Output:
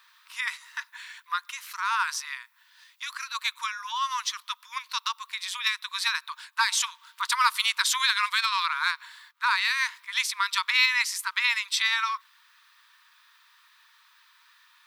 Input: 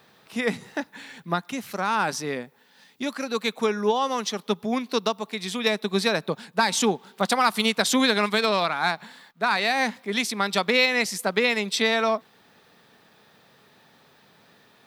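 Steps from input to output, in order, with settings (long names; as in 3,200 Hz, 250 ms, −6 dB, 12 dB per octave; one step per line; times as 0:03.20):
linear-phase brick-wall high-pass 910 Hz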